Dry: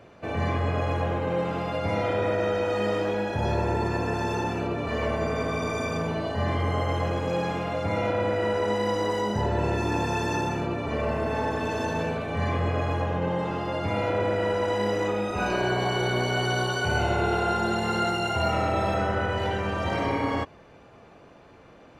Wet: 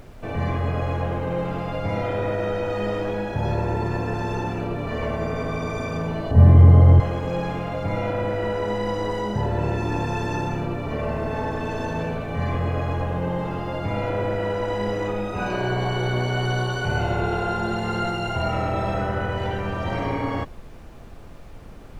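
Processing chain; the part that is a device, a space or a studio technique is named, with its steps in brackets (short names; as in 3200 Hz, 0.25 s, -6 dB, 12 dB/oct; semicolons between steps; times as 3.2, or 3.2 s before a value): 6.31–7 tilt -4.5 dB/oct; car interior (bell 130 Hz +6 dB 0.8 oct; high shelf 4600 Hz -6.5 dB; brown noise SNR 17 dB)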